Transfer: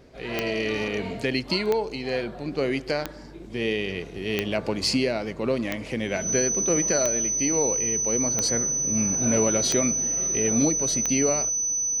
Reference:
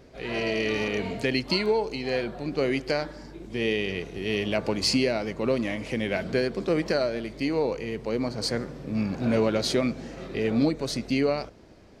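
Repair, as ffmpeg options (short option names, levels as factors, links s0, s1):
-af "adeclick=t=4,bandreject=f=6000:w=30"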